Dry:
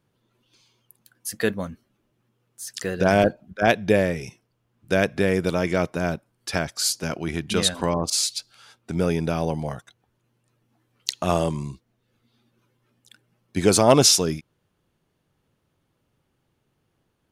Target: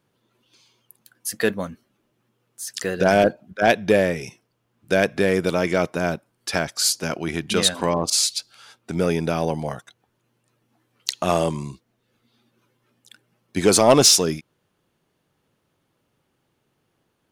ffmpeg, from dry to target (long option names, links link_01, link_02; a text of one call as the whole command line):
ffmpeg -i in.wav -filter_complex "[0:a]lowshelf=frequency=110:gain=-11,asplit=2[link_01][link_02];[link_02]asoftclip=type=hard:threshold=-14.5dB,volume=-4dB[link_03];[link_01][link_03]amix=inputs=2:normalize=0,volume=-1dB" out.wav